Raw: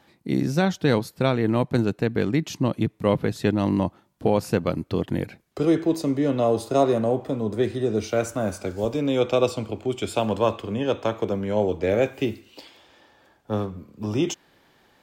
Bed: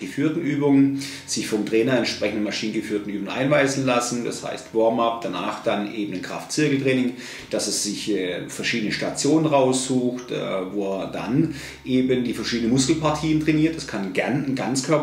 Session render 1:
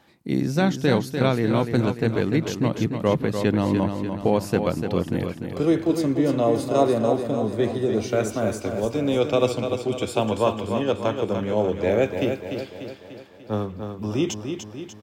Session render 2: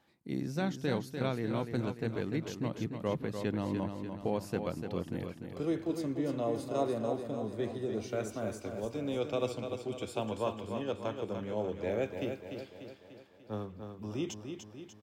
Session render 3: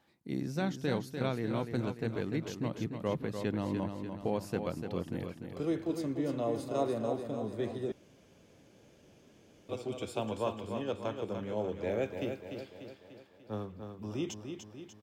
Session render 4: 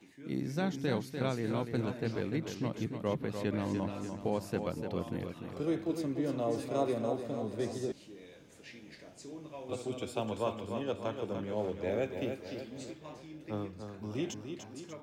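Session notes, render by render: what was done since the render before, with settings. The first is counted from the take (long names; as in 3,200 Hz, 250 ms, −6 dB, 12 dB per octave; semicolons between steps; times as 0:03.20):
repeating echo 295 ms, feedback 53%, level −7 dB
level −12.5 dB
0:07.92–0:09.69: fill with room tone
mix in bed −28 dB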